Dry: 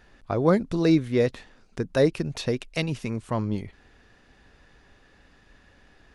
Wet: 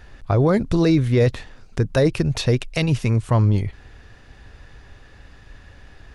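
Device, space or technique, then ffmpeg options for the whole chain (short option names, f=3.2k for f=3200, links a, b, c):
car stereo with a boomy subwoofer: -af "lowshelf=f=150:t=q:w=1.5:g=6.5,alimiter=limit=-16dB:level=0:latency=1:release=25,volume=7.5dB"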